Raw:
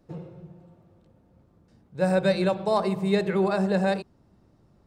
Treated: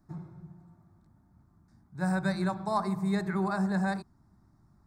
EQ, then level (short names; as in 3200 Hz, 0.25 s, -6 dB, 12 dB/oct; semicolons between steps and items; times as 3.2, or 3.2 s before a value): fixed phaser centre 1200 Hz, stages 4; -1.0 dB